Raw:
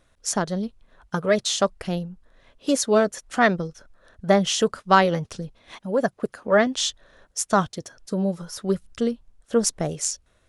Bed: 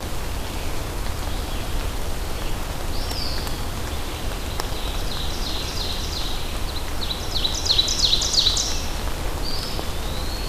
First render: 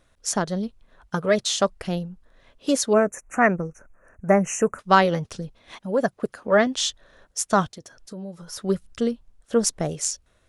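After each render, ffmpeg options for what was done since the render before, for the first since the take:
-filter_complex "[0:a]asettb=1/sr,asplit=3[s0][s1][s2];[s0]atrim=end=2.934[s3];[s1]atrim=start=2.93:end=4.79,asetpts=PTS-STARTPTS,afade=t=in:d=0.004:c=qsin,afade=t=out:st=1.856:d=0.004:c=qsin,asuperstop=centerf=4000:order=12:qfactor=1.2[s4];[s2]atrim=start=4.786[s5];[s3][s4]acrossfade=d=0.004:c1=hsin:c2=qsin[s6];[s6][s5]acrossfade=d=0.004:c1=qsin:c2=hsin,asettb=1/sr,asplit=3[s7][s8][s9];[s7]atrim=end=7.704[s10];[s8]atrim=start=7.7:end=8.48,asetpts=PTS-STARTPTS,afade=t=in:d=0.004:c=qsin,afade=t=out:st=0.776:d=0.004:c=qsin,acompressor=threshold=0.00794:ratio=2:attack=3.2:release=140:knee=1:detection=peak[s11];[s9]atrim=start=8.476[s12];[s10][s11]acrossfade=d=0.004:c1=hsin:c2=qsin[s13];[s13][s12]acrossfade=d=0.004:c1=qsin:c2=hsin"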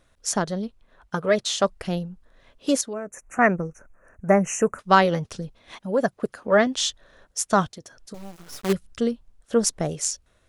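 -filter_complex "[0:a]asettb=1/sr,asplit=3[s0][s1][s2];[s0]atrim=end=0.514[s3];[s1]atrim=start=0.51:end=1.64,asetpts=PTS-STARTPTS,afade=t=in:d=0.004:c=qsin,afade=t=out:st=1.126:d=0.004:c=qsin,bass=f=250:g=-3,treble=f=4000:g=-3[s4];[s2]atrim=start=1.636[s5];[s3][s4]acrossfade=d=0.004:c1=hsin:c2=qsin[s6];[s6][s5]acrossfade=d=0.004:c1=qsin:c2=hsin,asettb=1/sr,asplit=3[s7][s8][s9];[s7]atrim=end=2.814[s10];[s8]atrim=start=2.81:end=3.39,asetpts=PTS-STARTPTS,afade=t=in:d=0.004:c=qsin,afade=t=out:st=0.576:d=0.004:c=qsin,acompressor=threshold=0.0112:ratio=2:attack=3.2:release=140:knee=1:detection=peak[s11];[s9]atrim=start=3.386[s12];[s10][s11]acrossfade=d=0.004:c1=hsin:c2=qsin[s13];[s13][s12]acrossfade=d=0.004:c1=qsin:c2=hsin,asettb=1/sr,asplit=3[s14][s15][s16];[s14]atrim=end=8.144[s17];[s15]atrim=start=8.14:end=8.73,asetpts=PTS-STARTPTS,afade=t=in:d=0.004:c=qsin,afade=t=out:st=0.586:d=0.004:c=qsin,acrusher=bits=5:dc=4:mix=0:aa=0.000001[s18];[s16]atrim=start=8.726[s19];[s17][s18]acrossfade=d=0.004:c1=hsin:c2=qsin[s20];[s20][s19]acrossfade=d=0.004:c1=qsin:c2=hsin"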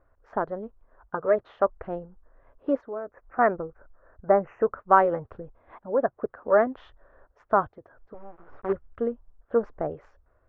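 -af "lowpass=f=1400:w=0.5412,lowpass=f=1400:w=1.3066,equalizer=f=180:w=1.6:g=-14"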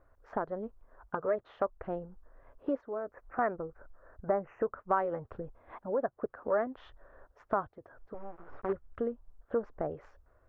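-af "acompressor=threshold=0.02:ratio=2"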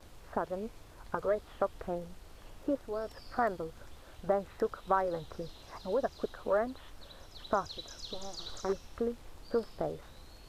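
-filter_complex "[1:a]volume=0.0473[s0];[0:a][s0]amix=inputs=2:normalize=0"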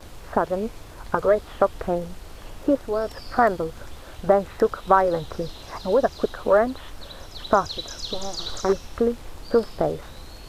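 -af "volume=3.98"

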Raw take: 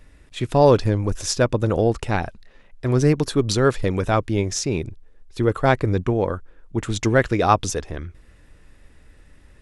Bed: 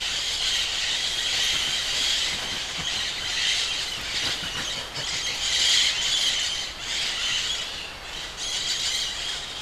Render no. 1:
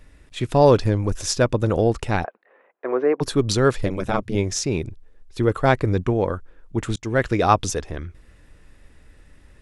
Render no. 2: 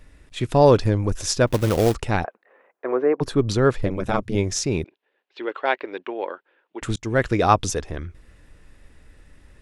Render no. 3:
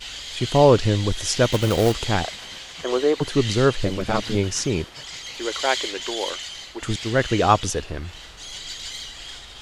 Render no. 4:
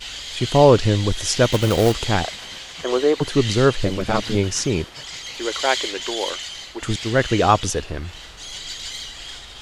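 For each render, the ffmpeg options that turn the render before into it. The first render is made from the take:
-filter_complex "[0:a]asplit=3[s0][s1][s2];[s0]afade=t=out:st=2.23:d=0.02[s3];[s1]highpass=f=340:w=0.5412,highpass=f=340:w=1.3066,equalizer=f=500:t=q:w=4:g=5,equalizer=f=760:t=q:w=4:g=4,equalizer=f=1100:t=q:w=4:g=4,lowpass=f=2100:w=0.5412,lowpass=f=2100:w=1.3066,afade=t=in:st=2.23:d=0.02,afade=t=out:st=3.2:d=0.02[s4];[s2]afade=t=in:st=3.2:d=0.02[s5];[s3][s4][s5]amix=inputs=3:normalize=0,asettb=1/sr,asplit=3[s6][s7][s8];[s6]atrim=end=3.864[s9];[s7]atrim=start=3.86:end=4.35,asetpts=PTS-STARTPTS,afade=t=in:d=0.004:c=qsin,afade=t=out:st=0.486:d=0.004:c=qsin,aeval=exprs='val(0)*sin(2*PI*100*n/s)':c=same[s10];[s8]atrim=start=4.346[s11];[s9][s10]acrossfade=d=0.004:c1=hsin:c2=qsin[s12];[s12][s11]acrossfade=d=0.004:c1=qsin:c2=hsin,asplit=2[s13][s14];[s13]atrim=end=6.96,asetpts=PTS-STARTPTS,afade=t=out:st=6.956:d=0.004:c=hsin[s15];[s14]atrim=start=6.96,asetpts=PTS-STARTPTS,afade=t=in:d=0.44:c=qsin[s16];[s15][s16]concat=n=2:v=0:a=1"
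-filter_complex "[0:a]asettb=1/sr,asplit=3[s0][s1][s2];[s0]atrim=end=1.474[s3];[s1]atrim=start=1.47:end=1.95,asetpts=PTS-STARTPTS,afade=t=in:d=0.004:c=qsin,afade=t=out:st=0.476:d=0.004:c=qsin,acrusher=bits=3:mode=log:mix=0:aa=0.000001[s4];[s2]atrim=start=1.946[s5];[s3][s4]acrossfade=d=0.004:c1=hsin:c2=qsin[s6];[s6][s5]acrossfade=d=0.004:c1=qsin:c2=hsin,asettb=1/sr,asplit=3[s7][s8][s9];[s7]atrim=end=2.964[s10];[s8]atrim=start=2.96:end=4.06,asetpts=PTS-STARTPTS,afade=t=in:d=0.004:c=qsin,afade=t=out:st=1.096:d=0.004:c=qsin,highshelf=f=3600:g=-9[s11];[s9]atrim=start=4.056[s12];[s10][s11]acrossfade=d=0.004:c1=hsin:c2=qsin[s13];[s13][s12]acrossfade=d=0.004:c1=qsin:c2=hsin,asettb=1/sr,asplit=3[s14][s15][s16];[s14]atrim=end=4.844[s17];[s15]atrim=start=4.84:end=6.82,asetpts=PTS-STARTPTS,afade=t=in:d=0.004:c=qsin,afade=t=out:st=1.976:d=0.004:c=qsin,highpass=f=410:w=0.5412,highpass=f=410:w=1.3066,equalizer=f=470:t=q:w=4:g=-7,equalizer=f=680:t=q:w=4:g=-4,equalizer=f=1200:t=q:w=4:g=-6,equalizer=f=2800:t=q:w=4:g=4,lowpass=f=3700:w=0.5412,lowpass=f=3700:w=1.3066[s18];[s16]atrim=start=6.816[s19];[s17][s18]acrossfade=d=0.004:c1=hsin:c2=qsin[s20];[s20][s19]acrossfade=d=0.004:c1=qsin:c2=hsin"
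-filter_complex "[1:a]volume=0.398[s0];[0:a][s0]amix=inputs=2:normalize=0"
-af "volume=1.26,alimiter=limit=0.794:level=0:latency=1"

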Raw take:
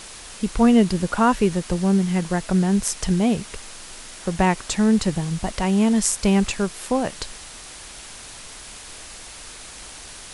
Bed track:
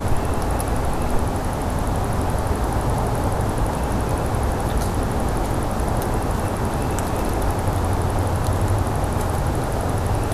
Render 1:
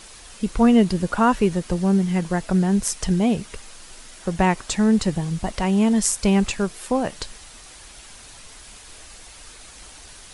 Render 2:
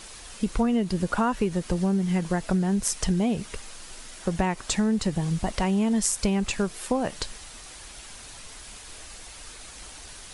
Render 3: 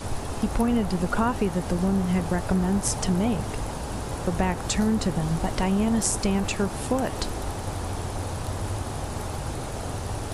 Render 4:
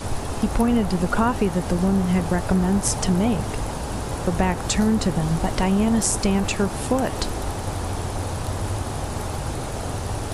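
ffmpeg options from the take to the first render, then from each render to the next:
-af "afftdn=nr=6:nf=-40"
-af "acompressor=threshold=0.1:ratio=12"
-filter_complex "[1:a]volume=0.316[s0];[0:a][s0]amix=inputs=2:normalize=0"
-af "volume=1.5,alimiter=limit=0.708:level=0:latency=1"

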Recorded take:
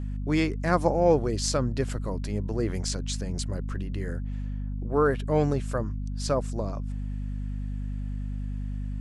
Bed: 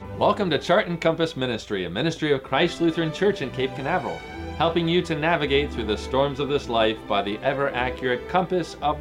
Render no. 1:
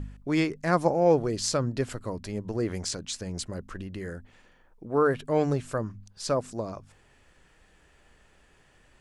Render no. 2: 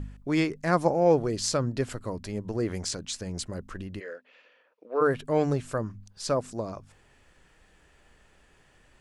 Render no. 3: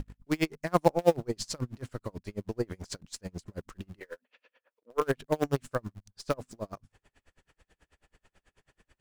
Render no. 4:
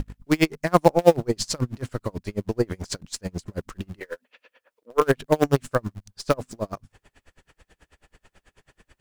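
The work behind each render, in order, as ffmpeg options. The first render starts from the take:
-af "bandreject=f=50:t=h:w=4,bandreject=f=100:t=h:w=4,bandreject=f=150:t=h:w=4,bandreject=f=200:t=h:w=4,bandreject=f=250:t=h:w=4"
-filter_complex "[0:a]asplit=3[s0][s1][s2];[s0]afade=t=out:st=3.99:d=0.02[s3];[s1]highpass=f=350:w=0.5412,highpass=f=350:w=1.3066,equalizer=f=360:t=q:w=4:g=-9,equalizer=f=520:t=q:w=4:g=6,equalizer=f=820:t=q:w=4:g=-8,equalizer=f=2600:t=q:w=4:g=8,lowpass=f=5000:w=0.5412,lowpass=f=5000:w=1.3066,afade=t=in:st=3.99:d=0.02,afade=t=out:st=5:d=0.02[s4];[s2]afade=t=in:st=5:d=0.02[s5];[s3][s4][s5]amix=inputs=3:normalize=0"
-filter_complex "[0:a]asplit=2[s0][s1];[s1]acrusher=bits=4:dc=4:mix=0:aa=0.000001,volume=0.355[s2];[s0][s2]amix=inputs=2:normalize=0,aeval=exprs='val(0)*pow(10,-35*(0.5-0.5*cos(2*PI*9.2*n/s))/20)':c=same"
-af "volume=2.66,alimiter=limit=0.794:level=0:latency=1"

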